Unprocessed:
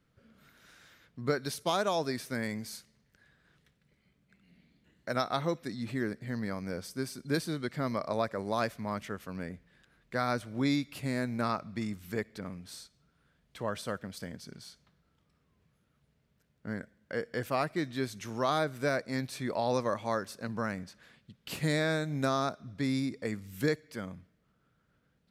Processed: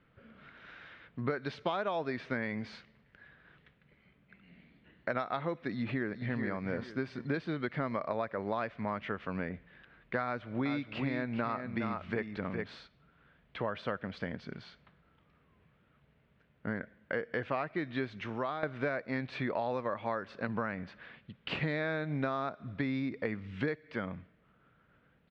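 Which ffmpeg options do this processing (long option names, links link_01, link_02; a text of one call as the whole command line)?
ffmpeg -i in.wav -filter_complex "[0:a]asplit=2[link_01][link_02];[link_02]afade=type=in:start_time=5.7:duration=0.01,afade=type=out:start_time=6.4:duration=0.01,aecho=0:1:430|860|1290:0.446684|0.0893367|0.0178673[link_03];[link_01][link_03]amix=inputs=2:normalize=0,asettb=1/sr,asplit=3[link_04][link_05][link_06];[link_04]atrim=end=10.244[link_07];[link_05]atrim=start=10.24:end=12.77,asetpts=PTS-STARTPTS,afade=type=in:duration=0.004:curve=qsin,afade=type=out:start_time=2.526:duration=0.004:curve=qsin,aecho=1:1:412:0.398,atrim=end_sample=111573[link_08];[link_06]atrim=start=12.766[link_09];[link_07][link_08]acrossfade=duration=0.004:curve1=hsin:curve2=qsin[link_10];[link_10][link_09]acrossfade=duration=0.004:curve1=qsin:curve2=hsin,asplit=2[link_11][link_12];[link_11]atrim=end=18.63,asetpts=PTS-STARTPTS,afade=type=out:start_time=18.08:duration=0.55:silence=0.141254[link_13];[link_12]atrim=start=18.63,asetpts=PTS-STARTPTS,afade=type=in:duration=0.004:curve=hsin:silence=0.141254[link_14];[link_13][link_14]concat=n=2:v=0:a=1,lowpass=frequency=3000:width=0.5412,lowpass=frequency=3000:width=1.3066,lowshelf=frequency=400:gain=-5.5,acompressor=threshold=-39dB:ratio=6,volume=8.5dB" out.wav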